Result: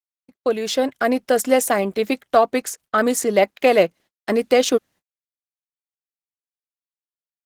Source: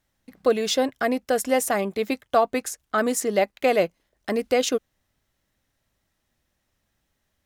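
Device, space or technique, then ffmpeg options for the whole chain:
video call: -af "highpass=140,dynaudnorm=f=130:g=13:m=10dB,agate=range=-49dB:threshold=-43dB:ratio=16:detection=peak,volume=-1dB" -ar 48000 -c:a libopus -b:a 16k

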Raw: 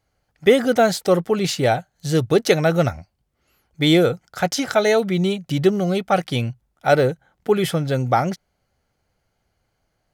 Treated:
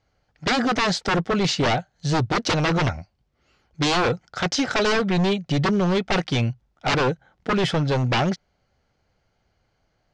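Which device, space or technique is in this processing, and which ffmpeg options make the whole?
synthesiser wavefolder: -af "aeval=exprs='0.141*(abs(mod(val(0)/0.141+3,4)-2)-1)':c=same,lowpass=f=6.2k:w=0.5412,lowpass=f=6.2k:w=1.3066,volume=2dB"

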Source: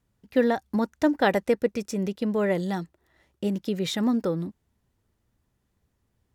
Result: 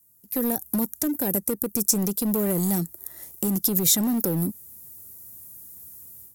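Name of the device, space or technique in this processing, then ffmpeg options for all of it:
FM broadcast chain: -filter_complex "[0:a]highpass=78,equalizer=f=3k:w=0.73:g=-13,dynaudnorm=f=260:g=3:m=16dB,acrossover=split=380|7900[a][b][c];[a]acompressor=threshold=-15dB:ratio=4[d];[b]acompressor=threshold=-30dB:ratio=4[e];[c]acompressor=threshold=-52dB:ratio=4[f];[d][e][f]amix=inputs=3:normalize=0,aemphasis=mode=production:type=75fm,alimiter=limit=-14.5dB:level=0:latency=1:release=105,asoftclip=type=hard:threshold=-18dB,lowpass=f=15k:w=0.5412,lowpass=f=15k:w=1.3066,aemphasis=mode=production:type=75fm,volume=-2dB"

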